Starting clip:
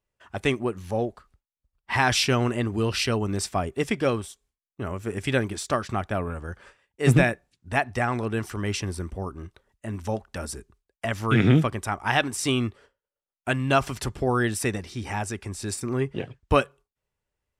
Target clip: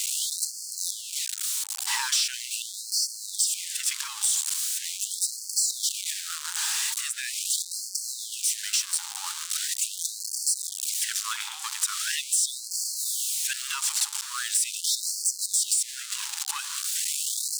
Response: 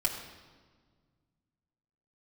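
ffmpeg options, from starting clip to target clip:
-af "aeval=exprs='val(0)+0.5*0.075*sgn(val(0))':c=same,equalizer=f=125:t=o:w=1:g=-4,equalizer=f=250:t=o:w=1:g=-11,equalizer=f=500:t=o:w=1:g=8,equalizer=f=1k:t=o:w=1:g=-7,equalizer=f=2k:t=o:w=1:g=-7,equalizer=f=4k:t=o:w=1:g=5,equalizer=f=8k:t=o:w=1:g=12,acompressor=threshold=-21dB:ratio=6,aeval=exprs='clip(val(0),-1,0.1)':c=same,afftfilt=real='re*gte(b*sr/1024,770*pow(4300/770,0.5+0.5*sin(2*PI*0.41*pts/sr)))':imag='im*gte(b*sr/1024,770*pow(4300/770,0.5+0.5*sin(2*PI*0.41*pts/sr)))':win_size=1024:overlap=0.75"

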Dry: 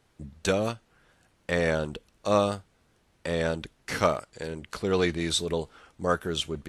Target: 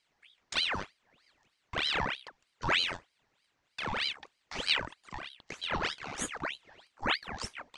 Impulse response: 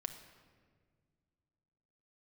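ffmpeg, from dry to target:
-af "highpass=340,equalizer=f=540:t=q:w=4:g=8,equalizer=f=1.5k:t=q:w=4:g=10,equalizer=f=6k:t=q:w=4:g=7,lowpass=f=8.1k:w=0.5412,lowpass=f=8.1k:w=1.3066,asetrate=37926,aresample=44100,aeval=exprs='val(0)*sin(2*PI*2000*n/s+2000*0.8/3.2*sin(2*PI*3.2*n/s))':c=same,volume=-7dB"

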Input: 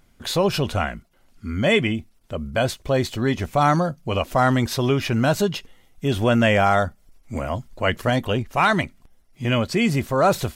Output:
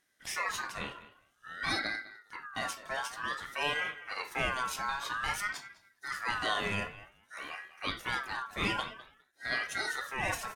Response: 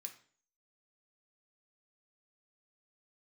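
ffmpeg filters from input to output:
-filter_complex "[0:a]asplit=2[a][b];[b]adelay=205,lowpass=f=2.3k:p=1,volume=-15dB,asplit=2[c][d];[d]adelay=205,lowpass=f=2.3k:p=1,volume=0.18[e];[a][c][e]amix=inputs=3:normalize=0[f];[1:a]atrim=start_sample=2205,afade=t=out:st=0.15:d=0.01,atrim=end_sample=7056[g];[f][g]afir=irnorm=-1:irlink=0,aeval=exprs='val(0)*sin(2*PI*1500*n/s+1500*0.2/0.52*sin(2*PI*0.52*n/s))':c=same,volume=-3.5dB"

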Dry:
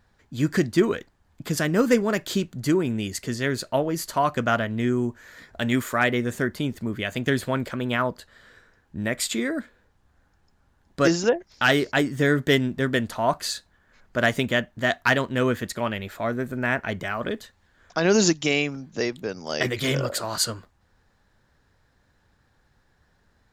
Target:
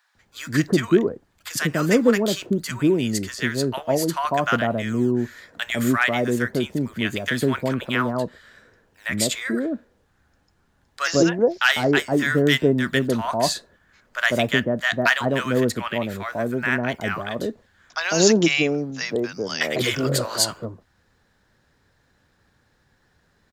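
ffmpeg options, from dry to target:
-filter_complex "[0:a]lowshelf=f=68:g=-9.5,acrossover=split=120|6800[a][b][c];[a]acrusher=samples=21:mix=1:aa=0.000001:lfo=1:lforange=33.6:lforate=1[d];[d][b][c]amix=inputs=3:normalize=0,acrossover=split=900[e][f];[e]adelay=150[g];[g][f]amix=inputs=2:normalize=0,volume=3.5dB"

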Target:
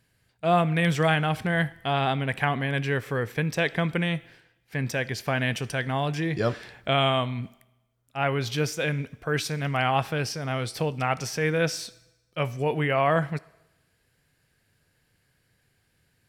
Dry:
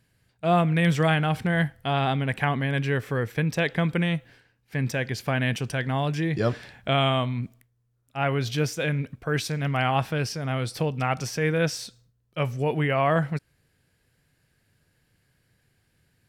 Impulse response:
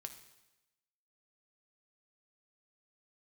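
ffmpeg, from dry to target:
-filter_complex "[0:a]asplit=2[a][b];[b]highpass=290[c];[1:a]atrim=start_sample=2205[d];[c][d]afir=irnorm=-1:irlink=0,volume=-3.5dB[e];[a][e]amix=inputs=2:normalize=0,volume=-2dB"

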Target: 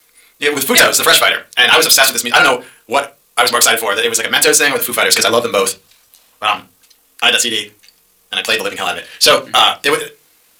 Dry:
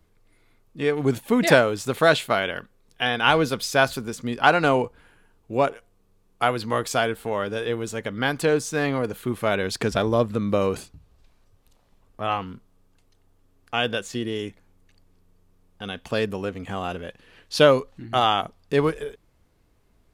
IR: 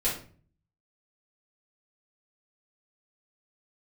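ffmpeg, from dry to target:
-filter_complex "[0:a]aderivative,asplit=2[a][b];[1:a]atrim=start_sample=2205,lowpass=4.2k[c];[b][c]afir=irnorm=-1:irlink=0,volume=-9.5dB[d];[a][d]amix=inputs=2:normalize=0,apsyclip=28dB,atempo=1.9,volume=-1.5dB"

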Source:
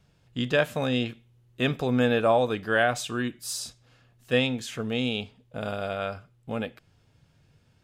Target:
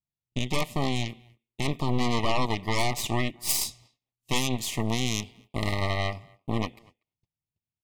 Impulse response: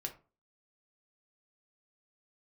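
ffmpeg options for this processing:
-filter_complex "[0:a]aeval=exprs='0.376*(cos(1*acos(clip(val(0)/0.376,-1,1)))-cos(1*PI/2))+0.0335*(cos(5*acos(clip(val(0)/0.376,-1,1)))-cos(5*PI/2))+0.168*(cos(8*acos(clip(val(0)/0.376,-1,1)))-cos(8*PI/2))':c=same,equalizer=f=510:t=o:w=0.36:g=-8,agate=range=-37dB:threshold=-51dB:ratio=16:detection=peak,asuperstop=centerf=1500:order=12:qfactor=2.4,alimiter=limit=-14.5dB:level=0:latency=1:release=219,asettb=1/sr,asplit=3[a][b][c];[a]atrim=end=3.494[d];[b]atrim=start=3.49:end=5.74,asetpts=PTS-STARTPTS,afade=t=in:d=0.004:c=qsin,afade=t=out:st=2.246:d=0.004:c=qsin,highshelf=f=5.4k:g=7[e];[c]atrim=start=5.736[f];[d][e]acrossfade=d=0.004:c1=hsin:c2=qsin[g];[g][f]acrossfade=d=0.004:c1=qsin:c2=hsin,asplit=2[h][i];[i]adelay=240,highpass=300,lowpass=3.4k,asoftclip=type=hard:threshold=-21.5dB,volume=-26dB[j];[h][j]amix=inputs=2:normalize=0"

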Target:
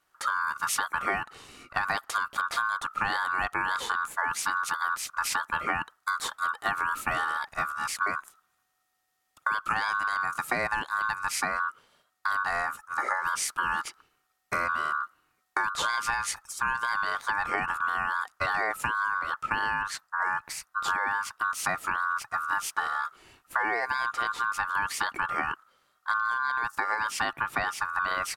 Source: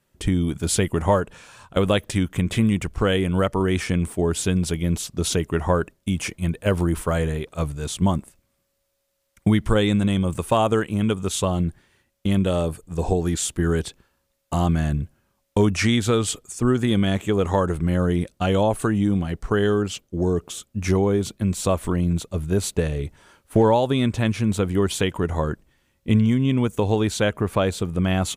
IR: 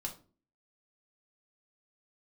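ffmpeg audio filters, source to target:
-af "acompressor=threshold=-22dB:ratio=6,aeval=exprs='val(0)*sin(2*PI*1300*n/s)':c=same"

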